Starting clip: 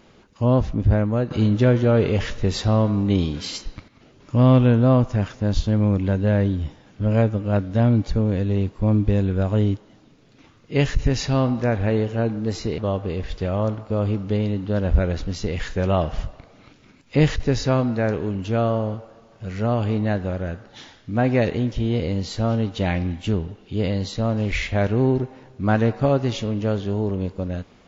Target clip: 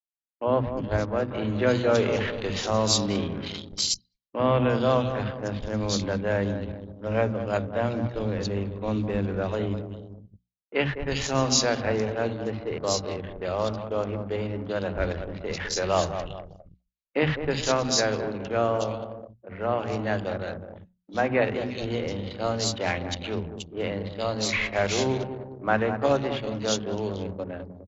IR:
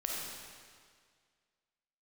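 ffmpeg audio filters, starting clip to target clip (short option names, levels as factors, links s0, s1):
-filter_complex "[0:a]asplit=2[s0][s1];[s1]adelay=204,lowpass=f=1500:p=1,volume=0.355,asplit=2[s2][s3];[s3]adelay=204,lowpass=f=1500:p=1,volume=0.52,asplit=2[s4][s5];[s5]adelay=204,lowpass=f=1500:p=1,volume=0.52,asplit=2[s6][s7];[s7]adelay=204,lowpass=f=1500:p=1,volume=0.52,asplit=2[s8][s9];[s9]adelay=204,lowpass=f=1500:p=1,volume=0.52,asplit=2[s10][s11];[s11]adelay=204,lowpass=f=1500:p=1,volume=0.52[s12];[s2][s4][s6][s8][s10][s12]amix=inputs=6:normalize=0[s13];[s0][s13]amix=inputs=2:normalize=0,agate=range=0.00794:threshold=0.0158:ratio=16:detection=peak,lowshelf=f=290:g=2,asplit=3[s14][s15][s16];[s15]asetrate=22050,aresample=44100,atempo=2,volume=0.178[s17];[s16]asetrate=37084,aresample=44100,atempo=1.18921,volume=0.126[s18];[s14][s17][s18]amix=inputs=3:normalize=0,acrossover=split=250|3000[s19][s20][s21];[s19]adelay=60[s22];[s21]adelay=360[s23];[s22][s20][s23]amix=inputs=3:normalize=0,anlmdn=10,bandreject=f=60:t=h:w=6,bandreject=f=120:t=h:w=6,bandreject=f=180:t=h:w=6,bandreject=f=240:t=h:w=6,areverse,acompressor=mode=upward:threshold=0.0282:ratio=2.5,areverse,aemphasis=mode=production:type=riaa"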